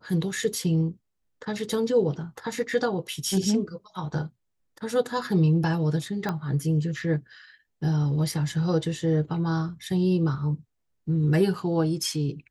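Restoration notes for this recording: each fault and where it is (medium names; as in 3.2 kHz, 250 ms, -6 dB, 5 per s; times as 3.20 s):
6.29 s: pop -15 dBFS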